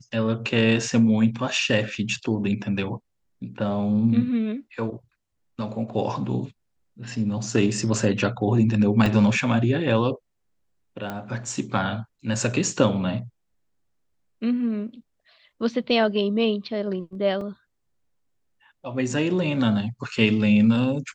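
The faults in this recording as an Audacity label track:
9.060000	9.060000	dropout 2.7 ms
11.100000	11.100000	pop -17 dBFS
17.410000	17.410000	dropout 2.8 ms

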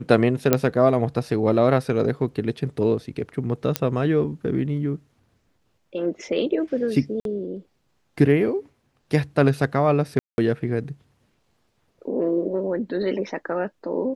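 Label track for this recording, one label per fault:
0.530000	0.530000	pop -2 dBFS
3.760000	3.760000	pop -4 dBFS
7.200000	7.250000	dropout 52 ms
10.190000	10.380000	dropout 191 ms

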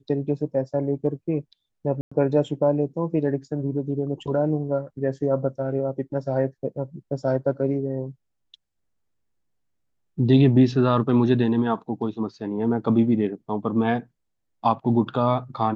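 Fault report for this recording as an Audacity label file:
2.010000	2.120000	dropout 105 ms

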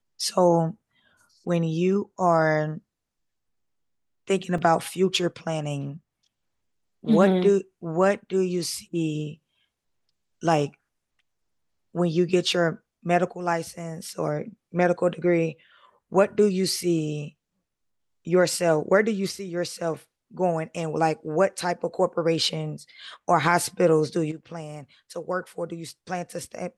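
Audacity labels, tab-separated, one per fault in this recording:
4.580000	4.580000	dropout 3.4 ms

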